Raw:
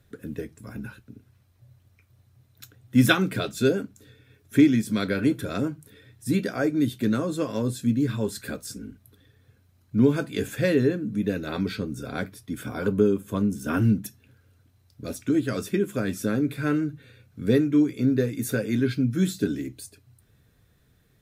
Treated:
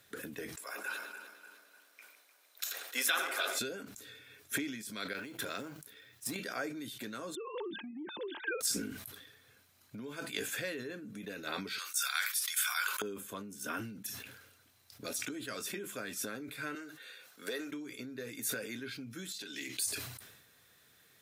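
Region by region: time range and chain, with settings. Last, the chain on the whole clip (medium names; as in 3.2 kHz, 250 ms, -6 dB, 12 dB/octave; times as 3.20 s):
0.56–3.59 s: backward echo that repeats 151 ms, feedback 67%, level -10 dB + high-pass 450 Hz 24 dB/octave + filtered feedback delay 97 ms, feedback 81%, low-pass 1.1 kHz, level -6.5 dB
5.13–6.36 s: companding laws mixed up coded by A + peaking EQ 9.1 kHz -4.5 dB 0.38 oct + compression 10:1, threshold -34 dBFS
7.35–8.61 s: formants replaced by sine waves + compression, threshold -31 dBFS + small resonant body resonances 340/890 Hz, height 12 dB, ringing for 40 ms
11.78–13.02 s: high-pass 1.2 kHz 24 dB/octave + treble shelf 3.8 kHz +9 dB
16.75–17.72 s: high-pass 490 Hz + peaking EQ 2.3 kHz -6.5 dB 0.2 oct
19.32–19.79 s: frequency weighting D + compression 12:1, threshold -37 dBFS
whole clip: compression 12:1, threshold -35 dBFS; high-pass 1.4 kHz 6 dB/octave; decay stretcher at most 52 dB/s; trim +7.5 dB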